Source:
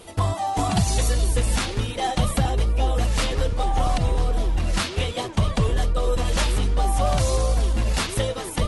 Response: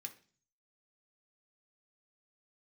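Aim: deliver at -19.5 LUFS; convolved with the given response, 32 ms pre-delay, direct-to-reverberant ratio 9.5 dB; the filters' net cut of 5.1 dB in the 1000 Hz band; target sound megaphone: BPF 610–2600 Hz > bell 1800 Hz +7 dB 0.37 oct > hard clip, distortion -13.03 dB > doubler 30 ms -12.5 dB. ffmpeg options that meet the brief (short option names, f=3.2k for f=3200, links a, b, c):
-filter_complex "[0:a]equalizer=f=1k:t=o:g=-6,asplit=2[a][b];[1:a]atrim=start_sample=2205,adelay=32[c];[b][c]afir=irnorm=-1:irlink=0,volume=-5dB[d];[a][d]amix=inputs=2:normalize=0,highpass=610,lowpass=2.6k,equalizer=f=1.8k:t=o:w=0.37:g=7,asoftclip=type=hard:threshold=-27.5dB,asplit=2[e][f];[f]adelay=30,volume=-12.5dB[g];[e][g]amix=inputs=2:normalize=0,volume=14dB"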